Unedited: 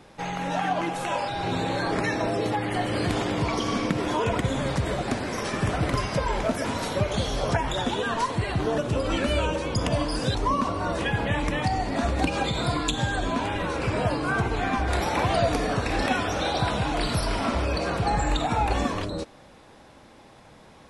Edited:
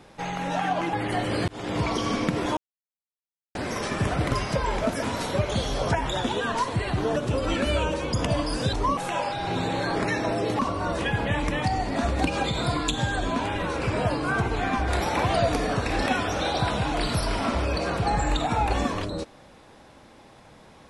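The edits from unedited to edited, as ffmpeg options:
-filter_complex "[0:a]asplit=7[a][b][c][d][e][f][g];[a]atrim=end=0.932[h];[b]atrim=start=2.548:end=3.1,asetpts=PTS-STARTPTS,afade=t=out:st=0.548:d=0.004:c=hsin[i];[c]atrim=start=3.1:end=4.19,asetpts=PTS-STARTPTS,afade=t=in:d=0.3,afade=t=out:st=1.086:d=0.004:c=hsin[j];[d]atrim=start=4.19:end=5.17,asetpts=PTS-STARTPTS,volume=0[k];[e]atrim=start=5.17:end=10.592,asetpts=PTS-STARTPTS,afade=t=in:d=0.004:c=hsin[l];[f]atrim=start=0.928:end=2.552[m];[g]atrim=start=10.588[n];[i][j][k][l]concat=n=4:v=0:a=1[o];[h][o]acrossfade=d=0.004:c1=hsin:c2=hsin[p];[p][m]acrossfade=d=0.004:c1=hsin:c2=hsin[q];[q][n]acrossfade=d=0.004:c1=hsin:c2=hsin"

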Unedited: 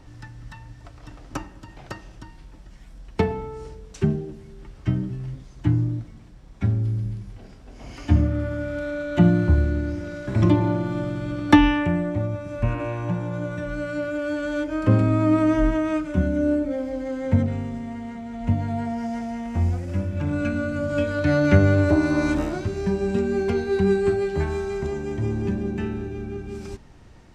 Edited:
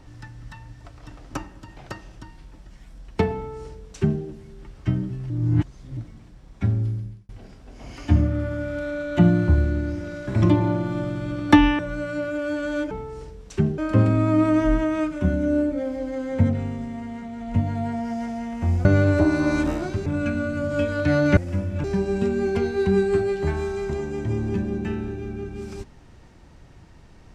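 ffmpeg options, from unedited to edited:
-filter_complex "[0:a]asplit=11[a][b][c][d][e][f][g][h][i][j][k];[a]atrim=end=5.302[l];[b]atrim=start=5.298:end=5.972,asetpts=PTS-STARTPTS,areverse[m];[c]atrim=start=5.968:end=7.29,asetpts=PTS-STARTPTS,afade=t=out:st=0.862:d=0.46[n];[d]atrim=start=7.29:end=11.792,asetpts=PTS-STARTPTS,afade=t=in:d=0.004:c=hsin[o];[e]atrim=start=13.588:end=14.712[p];[f]atrim=start=3.348:end=4.222[q];[g]atrim=start=14.708:end=19.782[r];[h]atrim=start=21.558:end=22.772[s];[i]atrim=start=20.248:end=21.562[t];[j]atrim=start=19.778:end=20.252[u];[k]atrim=start=22.768[v];[l][m]acrossfade=d=0.004:c1=hsin:c2=hsin[w];[n][o]concat=n=2:v=0:a=1[x];[w][x]acrossfade=d=0.004:c1=hsin:c2=hsin[y];[y][p]acrossfade=d=0.004:c1=hsin:c2=hsin[z];[z][q]acrossfade=d=0.004:c1=hsin:c2=hsin[aa];[aa][r]acrossfade=d=0.004:c1=hsin:c2=hsin[ab];[ab][s]acrossfade=d=0.004:c1=hsin:c2=hsin[ac];[ac][t]acrossfade=d=0.004:c1=hsin:c2=hsin[ad];[ad][u]acrossfade=d=0.004:c1=hsin:c2=hsin[ae];[ae][v]acrossfade=d=0.004:c1=hsin:c2=hsin"

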